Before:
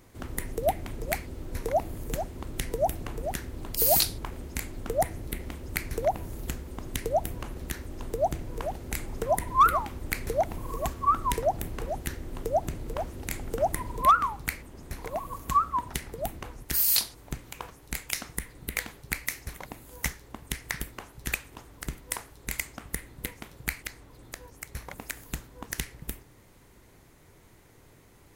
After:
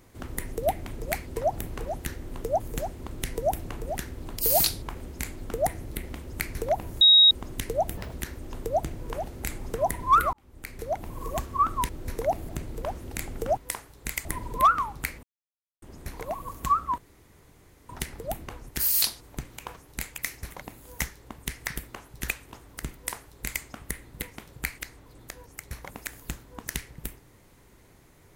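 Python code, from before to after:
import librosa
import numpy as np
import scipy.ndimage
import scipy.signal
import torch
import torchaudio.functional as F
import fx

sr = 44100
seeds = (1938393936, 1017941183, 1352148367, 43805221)

y = fx.edit(x, sr, fx.swap(start_s=1.36, length_s=0.6, other_s=11.37, other_length_s=1.24),
    fx.bleep(start_s=6.37, length_s=0.3, hz=3790.0, db=-12.0),
    fx.speed_span(start_s=7.33, length_s=0.27, speed=1.79),
    fx.fade_in_span(start_s=9.81, length_s=0.95),
    fx.insert_silence(at_s=14.67, length_s=0.59),
    fx.insert_room_tone(at_s=15.83, length_s=0.91),
    fx.cut(start_s=18.12, length_s=1.1),
    fx.duplicate(start_s=21.99, length_s=0.68, to_s=13.69), tone=tone)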